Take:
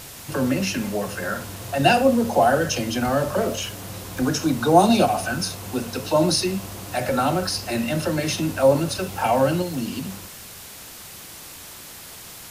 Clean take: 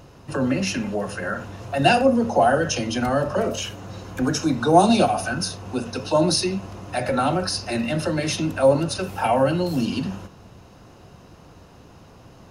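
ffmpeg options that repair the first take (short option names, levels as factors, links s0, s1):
-af "afwtdn=0.011,asetnsamples=n=441:p=0,asendcmd='9.62 volume volume 4.5dB',volume=1"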